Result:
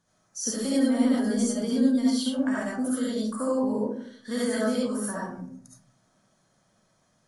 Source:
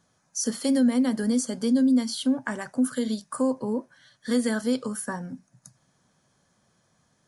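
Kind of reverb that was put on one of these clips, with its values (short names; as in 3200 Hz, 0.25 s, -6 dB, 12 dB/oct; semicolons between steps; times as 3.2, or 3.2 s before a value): digital reverb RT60 0.61 s, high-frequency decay 0.35×, pre-delay 30 ms, DRR -7 dB; gain -7 dB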